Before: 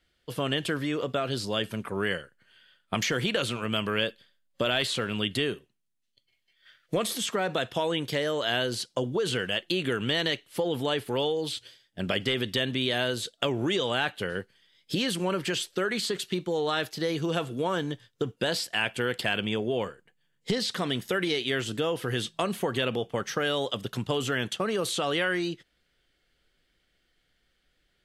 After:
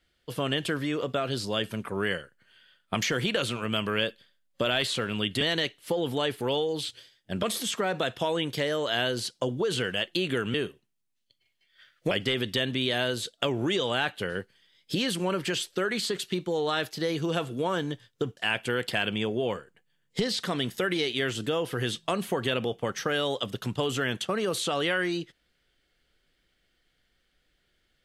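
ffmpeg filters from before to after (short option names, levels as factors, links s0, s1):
-filter_complex "[0:a]asplit=6[s0][s1][s2][s3][s4][s5];[s0]atrim=end=5.412[s6];[s1]atrim=start=10.088:end=12.112[s7];[s2]atrim=start=6.978:end=10.092[s8];[s3]atrim=start=5.408:end=6.982[s9];[s4]atrim=start=12.108:end=18.372[s10];[s5]atrim=start=18.678[s11];[s6][s7]acrossfade=d=0.004:c1=hsin:c2=hsin[s12];[s12][s8]acrossfade=d=0.004:c1=hsin:c2=hsin[s13];[s13][s9]acrossfade=d=0.004:c1=hsin:c2=hsin[s14];[s14][s10]acrossfade=d=0.004:c1=hsin:c2=hsin[s15];[s15][s11]acrossfade=d=0.004:c1=hsin:c2=hsin"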